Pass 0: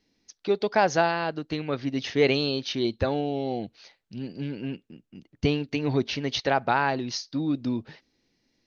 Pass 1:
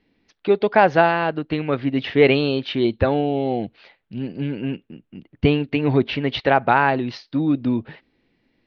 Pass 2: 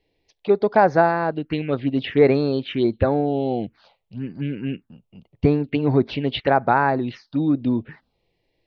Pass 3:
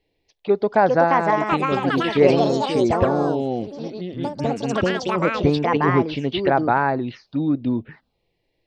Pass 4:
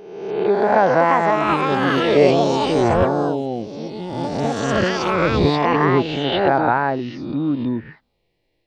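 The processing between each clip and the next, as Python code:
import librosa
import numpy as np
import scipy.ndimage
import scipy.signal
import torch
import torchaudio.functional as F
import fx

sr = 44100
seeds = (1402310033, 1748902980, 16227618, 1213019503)

y1 = scipy.signal.sosfilt(scipy.signal.butter(4, 3200.0, 'lowpass', fs=sr, output='sos'), x)
y1 = F.gain(torch.from_numpy(y1), 7.0).numpy()
y2 = fx.env_phaser(y1, sr, low_hz=230.0, high_hz=3000.0, full_db=-15.5)
y3 = fx.echo_pitch(y2, sr, ms=507, semitones=4, count=3, db_per_echo=-3.0)
y3 = F.gain(torch.from_numpy(y3), -1.0).numpy()
y4 = fx.spec_swells(y3, sr, rise_s=1.14)
y4 = F.gain(torch.from_numpy(y4), -1.0).numpy()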